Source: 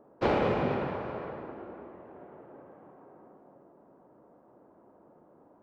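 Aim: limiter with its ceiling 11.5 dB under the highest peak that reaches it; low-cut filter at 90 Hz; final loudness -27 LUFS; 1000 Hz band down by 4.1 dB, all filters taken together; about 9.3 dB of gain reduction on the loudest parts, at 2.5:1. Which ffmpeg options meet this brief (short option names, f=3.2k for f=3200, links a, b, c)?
-af "highpass=90,equalizer=f=1k:t=o:g=-5.5,acompressor=threshold=-39dB:ratio=2.5,volume=21.5dB,alimiter=limit=-15.5dB:level=0:latency=1"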